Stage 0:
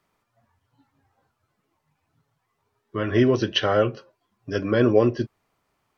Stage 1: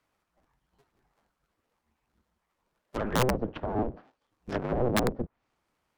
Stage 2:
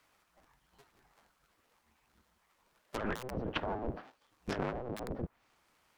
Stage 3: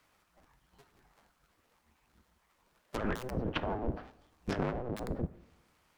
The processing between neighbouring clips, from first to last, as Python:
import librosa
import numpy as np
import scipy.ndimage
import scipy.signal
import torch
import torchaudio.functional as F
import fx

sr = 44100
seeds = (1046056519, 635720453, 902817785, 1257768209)

y1 = fx.cycle_switch(x, sr, every=2, mode='inverted')
y1 = fx.env_lowpass_down(y1, sr, base_hz=530.0, full_db=-19.0)
y1 = (np.mod(10.0 ** (12.5 / 20.0) * y1 + 1.0, 2.0) - 1.0) / 10.0 ** (12.5 / 20.0)
y1 = y1 * librosa.db_to_amplitude(-5.0)
y2 = fx.tilt_shelf(y1, sr, db=-4.0, hz=780.0)
y2 = fx.over_compress(y2, sr, threshold_db=-37.0, ratio=-1.0)
y2 = y2 * librosa.db_to_amplitude(-1.0)
y3 = fx.low_shelf(y2, sr, hz=310.0, db=5.0)
y3 = fx.rev_plate(y3, sr, seeds[0], rt60_s=1.0, hf_ratio=0.55, predelay_ms=0, drr_db=16.0)